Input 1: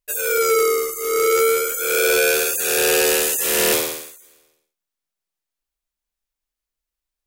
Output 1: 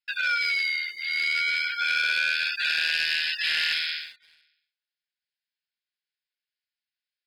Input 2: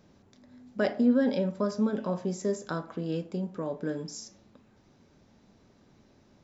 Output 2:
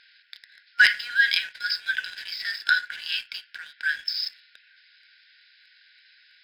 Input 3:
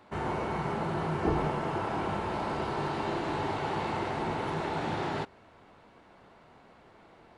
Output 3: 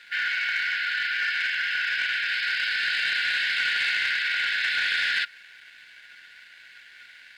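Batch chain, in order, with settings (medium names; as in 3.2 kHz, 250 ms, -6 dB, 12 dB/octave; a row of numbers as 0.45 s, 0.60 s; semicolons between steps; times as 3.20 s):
FFT band-pass 1.4–5.3 kHz; compression 4:1, threshold -28 dBFS; waveshaping leveller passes 1; normalise loudness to -24 LUFS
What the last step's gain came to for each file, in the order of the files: +2.5 dB, +19.0 dB, +15.0 dB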